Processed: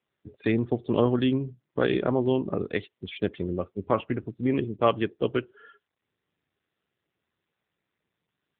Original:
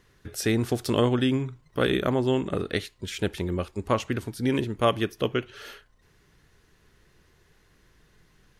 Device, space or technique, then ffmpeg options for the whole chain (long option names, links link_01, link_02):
mobile call with aggressive noise cancelling: -af "highpass=frequency=110:poles=1,afftdn=noise_reduction=28:noise_floor=-36,volume=1dB" -ar 8000 -c:a libopencore_amrnb -b:a 7950